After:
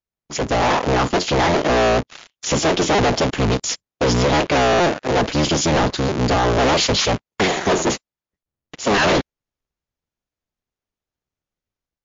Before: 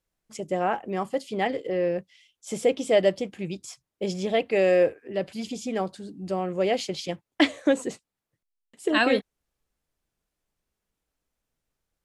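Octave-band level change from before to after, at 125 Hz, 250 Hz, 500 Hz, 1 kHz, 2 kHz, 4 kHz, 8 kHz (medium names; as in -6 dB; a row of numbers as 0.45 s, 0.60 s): +16.5 dB, +7.5 dB, +5.5 dB, +12.5 dB, +9.0 dB, +12.5 dB, +16.5 dB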